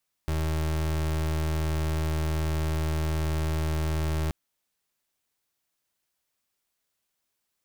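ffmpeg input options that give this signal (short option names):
-f lavfi -i "aevalsrc='0.0447*(2*lt(mod(78.7*t,1),0.32)-1)':d=4.03:s=44100"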